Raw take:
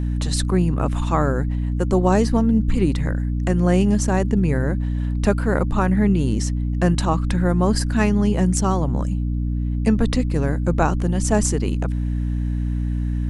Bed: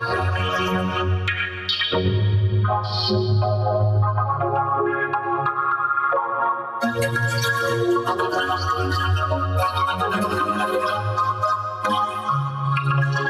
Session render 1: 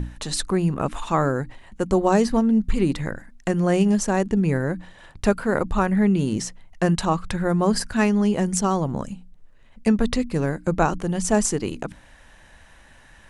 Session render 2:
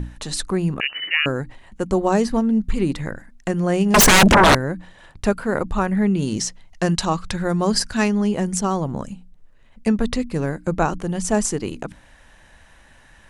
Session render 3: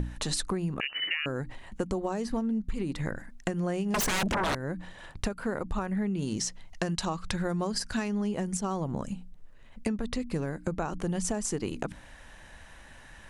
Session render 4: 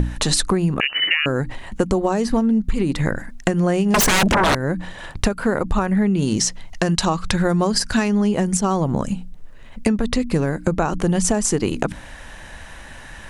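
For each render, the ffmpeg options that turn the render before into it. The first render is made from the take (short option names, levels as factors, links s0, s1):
-af "bandreject=f=60:t=h:w=6,bandreject=f=120:t=h:w=6,bandreject=f=180:t=h:w=6,bandreject=f=240:t=h:w=6,bandreject=f=300:t=h:w=6"
-filter_complex "[0:a]asettb=1/sr,asplit=3[s0][s1][s2];[s0]atrim=end=0.804[s3];[s1]atrim=start=0.8:end=1.26,asetpts=PTS-STARTPTS,afade=t=in:d=0.004:c=qsin,afade=t=out:st=0.456:d=0.004:c=qsin,lowpass=f=2600:t=q:w=0.5098,lowpass=f=2600:t=q:w=0.6013,lowpass=f=2600:t=q:w=0.9,lowpass=f=2600:t=q:w=2.563,afreqshift=-3000[s4];[s2]atrim=start=1.256[s5];[s3][s4]acrossfade=d=0.004:c1=hsin:c2=qsin[s6];[s6][s5]acrossfade=d=0.004:c1=qsin:c2=hsin,asettb=1/sr,asplit=3[s7][s8][s9];[s7]atrim=end=3.944[s10];[s8]atrim=start=3.94:end=4.55,asetpts=PTS-STARTPTS,afade=t=in:d=0.004:c=qsin,afade=t=out:st=0.606:d=0.004:c=qsin,aeval=exprs='0.398*sin(PI/2*10*val(0)/0.398)':c=same[s11];[s9]atrim=start=4.546[s12];[s10][s11]acrossfade=d=0.004:c1=hsin:c2=qsin[s13];[s13][s12]acrossfade=d=0.004:c1=qsin:c2=hsin,asettb=1/sr,asplit=3[s14][s15][s16];[s14]atrim=end=6.224[s17];[s15]atrim=start=6.22:end=8.08,asetpts=PTS-STARTPTS,afade=t=in:d=0.004:c=qsin,afade=t=out:st=1.856:d=0.004:c=qsin,equalizer=f=5200:w=0.83:g=7.5[s18];[s16]atrim=start=8.076[s19];[s17][s18]acrossfade=d=0.004:c1=hsin:c2=qsin[s20];[s20][s19]acrossfade=d=0.004:c1=qsin:c2=hsin"
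-af "alimiter=limit=0.282:level=0:latency=1:release=276,acompressor=threshold=0.0447:ratio=10"
-af "volume=3.98,alimiter=limit=0.708:level=0:latency=1"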